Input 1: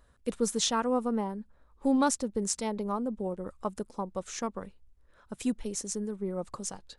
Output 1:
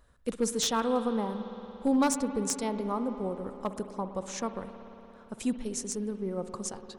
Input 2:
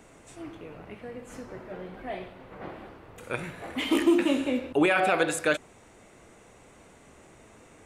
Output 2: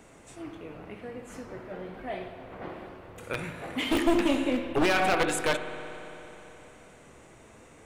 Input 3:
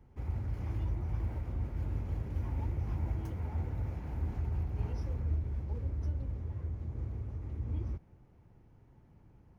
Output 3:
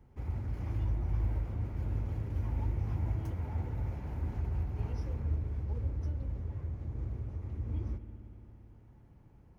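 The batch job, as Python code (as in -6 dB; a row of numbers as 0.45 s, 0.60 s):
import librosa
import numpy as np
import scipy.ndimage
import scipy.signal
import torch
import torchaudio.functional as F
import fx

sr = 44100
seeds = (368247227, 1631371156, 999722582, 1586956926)

y = np.minimum(x, 2.0 * 10.0 ** (-21.5 / 20.0) - x)
y = fx.rev_spring(y, sr, rt60_s=3.6, pass_ms=(57,), chirp_ms=60, drr_db=9.0)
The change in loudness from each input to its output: 0.0 LU, -2.0 LU, +1.0 LU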